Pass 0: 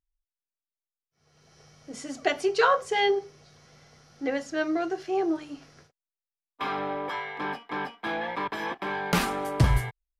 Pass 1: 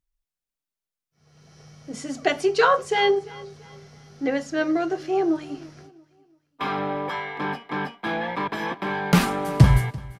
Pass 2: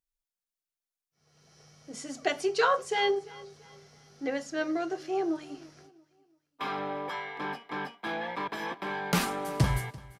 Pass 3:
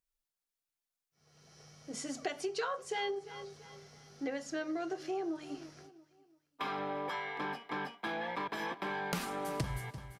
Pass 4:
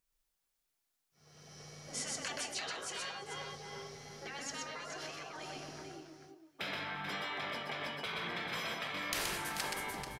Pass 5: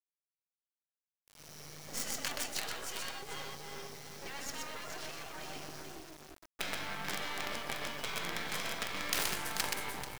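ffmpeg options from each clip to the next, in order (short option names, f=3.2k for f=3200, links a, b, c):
-af "equalizer=f=160:w=1.2:g=7.5,aecho=1:1:340|680|1020:0.0891|0.033|0.0122,volume=3dB"
-af "bass=f=250:g=-6,treble=f=4k:g=4,volume=-6.5dB"
-af "acompressor=threshold=-34dB:ratio=5"
-filter_complex "[0:a]afftfilt=real='re*lt(hypot(re,im),0.0282)':imag='im*lt(hypot(re,im),0.0282)':win_size=1024:overlap=0.75,asplit=2[a][b];[b]aecho=0:1:125|437:0.668|0.376[c];[a][c]amix=inputs=2:normalize=0,volume=5dB"
-af "acrusher=bits=6:dc=4:mix=0:aa=0.000001,volume=4.5dB"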